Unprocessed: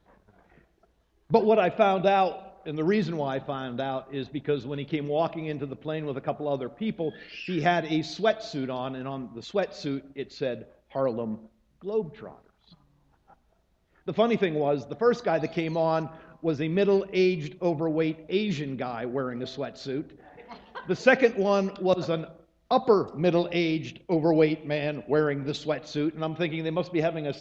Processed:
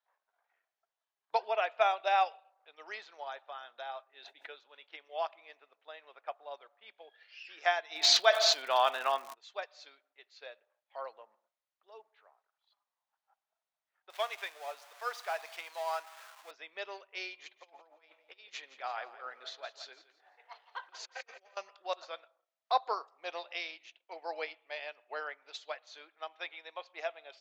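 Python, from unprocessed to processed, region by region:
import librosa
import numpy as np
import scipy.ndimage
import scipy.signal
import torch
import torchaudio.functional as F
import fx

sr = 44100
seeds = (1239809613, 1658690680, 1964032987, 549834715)

y = fx.chain(x, sr, fx.peak_eq(hz=1100.0, db=-13.5, octaves=0.23),
    fx.sustainer(db_per_s=35.0), at=(4.08, 4.52))
y = fx.dmg_crackle(y, sr, seeds[0], per_s=180.0, level_db=-44.0, at=(7.95, 9.33), fade=0.02)
y = fx.env_flatten(y, sr, amount_pct=70, at=(7.95, 9.33), fade=0.02)
y = fx.chain(y, sr, fx.zero_step(step_db=-33.5),
    fx.highpass(hz=210.0, slope=12),
    fx.low_shelf(hz=370.0, db=-11.5), at=(14.1, 16.51))
y = fx.chain(y, sr, fx.over_compress(threshold_db=-31.0, ratio=-0.5),
    fx.echo_feedback(ms=170, feedback_pct=31, wet_db=-10.5), at=(17.39, 21.57))
y = scipy.signal.sosfilt(scipy.signal.butter(4, 730.0, 'highpass', fs=sr, output='sos'), y)
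y = fx.upward_expand(y, sr, threshold_db=-51.0, expansion=1.5)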